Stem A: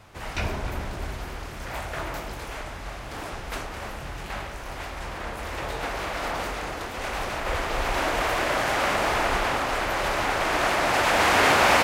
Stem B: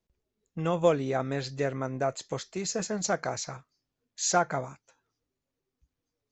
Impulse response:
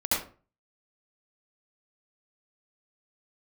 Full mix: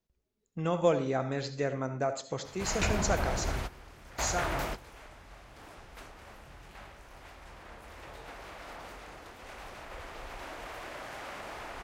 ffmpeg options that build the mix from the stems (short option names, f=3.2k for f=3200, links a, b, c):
-filter_complex "[0:a]acompressor=threshold=-24dB:ratio=3,adelay=2450,volume=-0.5dB[a];[1:a]volume=-3dB,afade=t=out:st=4.15:d=0.24:silence=0.354813,asplit=3[b][c][d];[c]volume=-19.5dB[e];[d]apad=whole_len=630021[f];[a][f]sidechaingate=range=-15dB:threshold=-54dB:ratio=16:detection=peak[g];[2:a]atrim=start_sample=2205[h];[e][h]afir=irnorm=-1:irlink=0[i];[g][b][i]amix=inputs=3:normalize=0"